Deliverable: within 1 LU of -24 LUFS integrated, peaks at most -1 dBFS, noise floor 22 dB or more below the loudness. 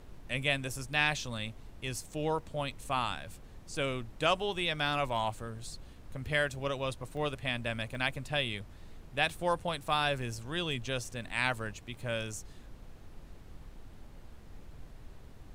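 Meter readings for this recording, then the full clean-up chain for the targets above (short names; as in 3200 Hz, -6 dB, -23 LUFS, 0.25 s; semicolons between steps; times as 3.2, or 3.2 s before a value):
dropouts 2; longest dropout 1.1 ms; noise floor -52 dBFS; noise floor target -56 dBFS; loudness -33.5 LUFS; peak -13.0 dBFS; loudness target -24.0 LUFS
-> interpolate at 7.17/7.95, 1.1 ms; noise print and reduce 6 dB; gain +9.5 dB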